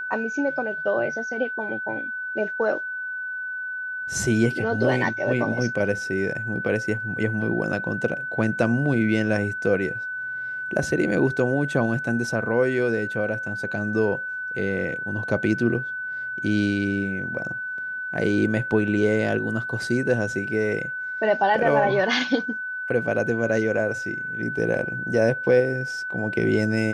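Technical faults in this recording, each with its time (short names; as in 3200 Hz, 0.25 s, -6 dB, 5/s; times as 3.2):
tone 1500 Hz -28 dBFS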